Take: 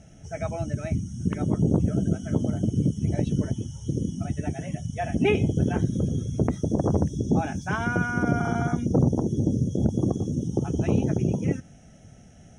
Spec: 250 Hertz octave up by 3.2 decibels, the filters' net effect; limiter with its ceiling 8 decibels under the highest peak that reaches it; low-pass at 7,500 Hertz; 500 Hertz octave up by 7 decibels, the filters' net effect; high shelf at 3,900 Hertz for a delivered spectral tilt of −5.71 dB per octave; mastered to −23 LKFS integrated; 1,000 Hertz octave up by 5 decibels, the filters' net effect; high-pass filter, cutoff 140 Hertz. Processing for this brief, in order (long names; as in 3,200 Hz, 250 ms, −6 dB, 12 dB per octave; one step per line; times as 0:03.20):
high-pass filter 140 Hz
low-pass filter 7,500 Hz
parametric band 250 Hz +3 dB
parametric band 500 Hz +7.5 dB
parametric band 1,000 Hz +3 dB
high-shelf EQ 3,900 Hz +6 dB
level +2 dB
brickwall limiter −9 dBFS